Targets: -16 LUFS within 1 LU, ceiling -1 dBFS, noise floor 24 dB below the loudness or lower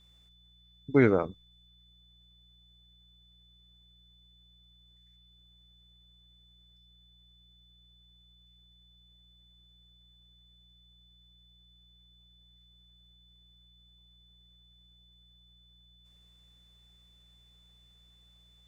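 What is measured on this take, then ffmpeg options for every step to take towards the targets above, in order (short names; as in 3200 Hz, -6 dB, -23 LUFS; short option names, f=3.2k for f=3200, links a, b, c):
hum 60 Hz; harmonics up to 180 Hz; hum level -62 dBFS; steady tone 3500 Hz; tone level -61 dBFS; loudness -26.0 LUFS; peak -9.5 dBFS; loudness target -16.0 LUFS
-> -af "bandreject=f=60:t=h:w=4,bandreject=f=120:t=h:w=4,bandreject=f=180:t=h:w=4"
-af "bandreject=f=3.5k:w=30"
-af "volume=10dB,alimiter=limit=-1dB:level=0:latency=1"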